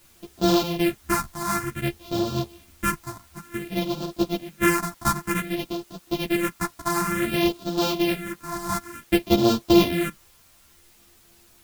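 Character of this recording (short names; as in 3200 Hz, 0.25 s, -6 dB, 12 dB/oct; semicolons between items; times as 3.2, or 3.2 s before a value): a buzz of ramps at a fixed pitch in blocks of 128 samples; phasing stages 4, 0.55 Hz, lowest notch 450–2000 Hz; a quantiser's noise floor 10-bit, dither triangular; a shimmering, thickened sound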